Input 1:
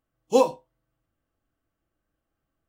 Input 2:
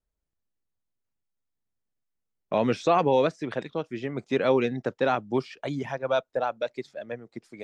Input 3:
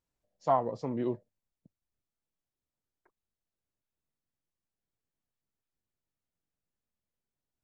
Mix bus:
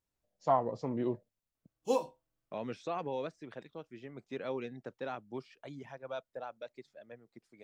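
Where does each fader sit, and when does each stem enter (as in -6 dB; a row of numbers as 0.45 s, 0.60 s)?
-11.5 dB, -15.5 dB, -1.5 dB; 1.55 s, 0.00 s, 0.00 s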